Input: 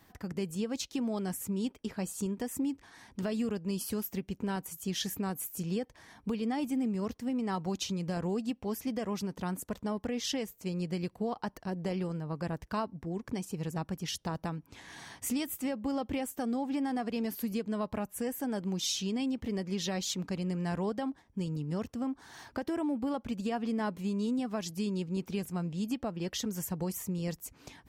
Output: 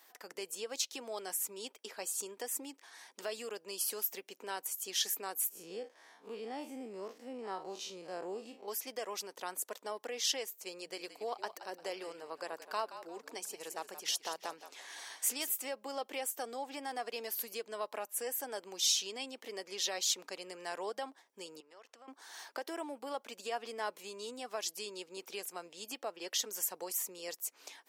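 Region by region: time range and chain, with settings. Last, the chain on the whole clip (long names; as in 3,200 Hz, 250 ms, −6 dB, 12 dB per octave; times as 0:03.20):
0:05.49–0:08.68: spectrum smeared in time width 85 ms + spectral tilt −2.5 dB per octave
0:10.78–0:15.52: mains-hum notches 60/120/180 Hz + echo with shifted repeats 174 ms, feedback 39%, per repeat −54 Hz, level −12 dB
0:21.60–0:22.08: resonant band-pass 1,500 Hz, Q 0.52 + downward compressor 4 to 1, threshold −49 dBFS
whole clip: high-pass filter 420 Hz 24 dB per octave; high-shelf EQ 2,900 Hz +8 dB; level −2.5 dB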